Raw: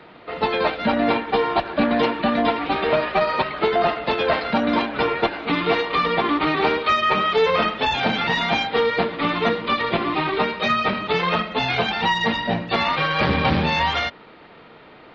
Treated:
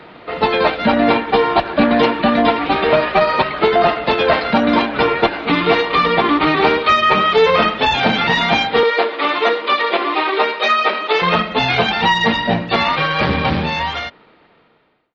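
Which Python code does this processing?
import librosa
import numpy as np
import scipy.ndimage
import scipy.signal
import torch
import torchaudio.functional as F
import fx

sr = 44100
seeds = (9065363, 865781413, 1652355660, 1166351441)

y = fx.fade_out_tail(x, sr, length_s=2.64)
y = fx.highpass(y, sr, hz=350.0, slope=24, at=(8.83, 11.22))
y = F.gain(torch.from_numpy(y), 6.0).numpy()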